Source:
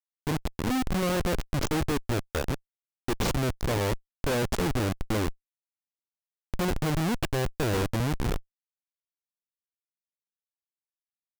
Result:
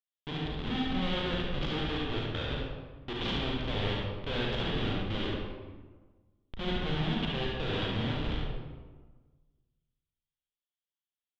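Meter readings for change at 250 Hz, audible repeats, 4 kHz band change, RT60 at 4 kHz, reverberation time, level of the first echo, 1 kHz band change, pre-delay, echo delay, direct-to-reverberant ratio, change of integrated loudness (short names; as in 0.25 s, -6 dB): -4.5 dB, 1, +3.0 dB, 0.80 s, 1.4 s, -5.5 dB, -5.0 dB, 31 ms, 72 ms, -4.0 dB, -4.0 dB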